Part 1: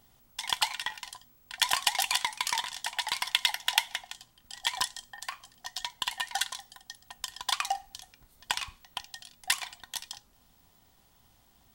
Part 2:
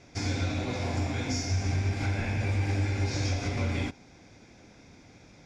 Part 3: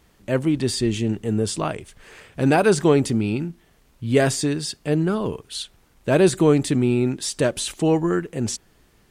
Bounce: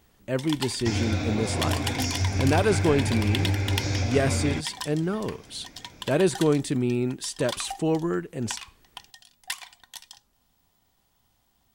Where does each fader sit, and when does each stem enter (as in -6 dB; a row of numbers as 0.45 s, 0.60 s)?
-5.0 dB, +2.5 dB, -5.5 dB; 0.00 s, 0.70 s, 0.00 s